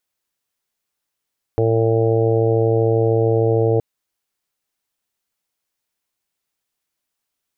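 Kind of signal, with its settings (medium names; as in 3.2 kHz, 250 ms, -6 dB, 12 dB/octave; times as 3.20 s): steady additive tone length 2.22 s, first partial 113 Hz, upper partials -20/-4.5/1.5/-7/-11/-13 dB, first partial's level -18 dB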